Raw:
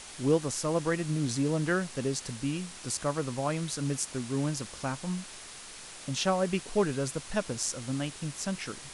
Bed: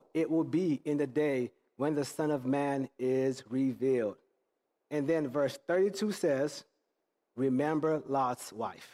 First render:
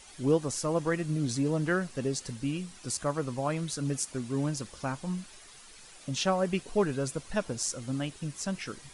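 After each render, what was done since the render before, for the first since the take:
broadband denoise 10 dB, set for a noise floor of −46 dBFS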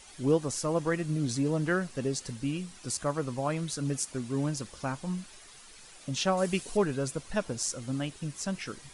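0:06.37–0:06.77: high-shelf EQ 4,500 Hz +11 dB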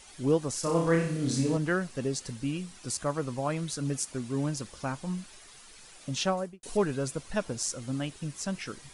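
0:00.60–0:01.57: flutter between parallel walls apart 5.2 metres, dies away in 0.57 s
0:06.23–0:06.63: fade out and dull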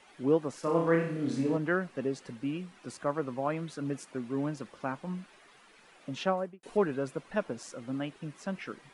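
three-way crossover with the lows and the highs turned down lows −19 dB, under 160 Hz, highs −17 dB, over 2,900 Hz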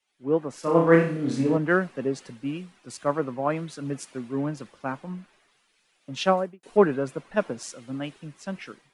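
automatic gain control gain up to 5.5 dB
multiband upward and downward expander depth 70%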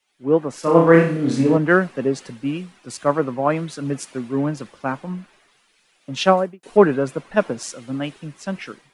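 level +6.5 dB
brickwall limiter −1 dBFS, peak gain reduction 3 dB

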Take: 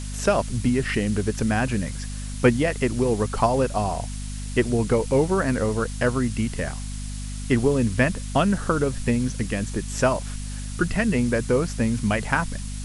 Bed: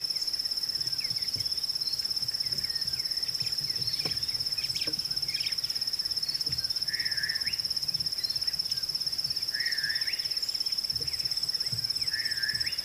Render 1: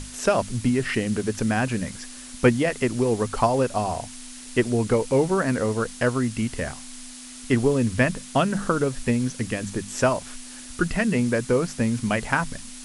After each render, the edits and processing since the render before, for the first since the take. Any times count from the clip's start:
mains-hum notches 50/100/150/200 Hz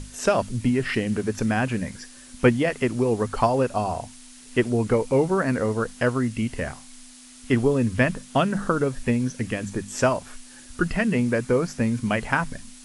noise reduction from a noise print 6 dB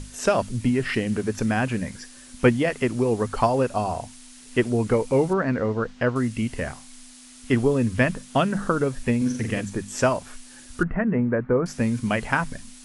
0:05.33–0:06.16: high-frequency loss of the air 160 metres
0:09.17–0:09.61: flutter between parallel walls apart 7.6 metres, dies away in 0.55 s
0:10.83–0:11.66: low-pass filter 1,700 Hz 24 dB per octave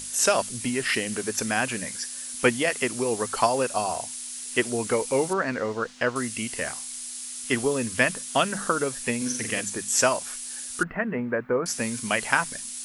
RIAA equalisation recording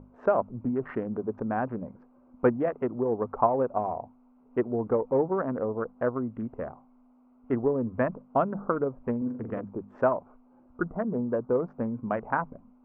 adaptive Wiener filter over 25 samples
low-pass filter 1,200 Hz 24 dB per octave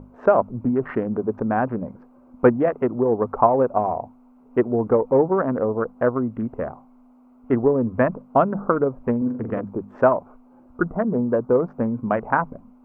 level +7.5 dB
brickwall limiter −2 dBFS, peak gain reduction 1 dB

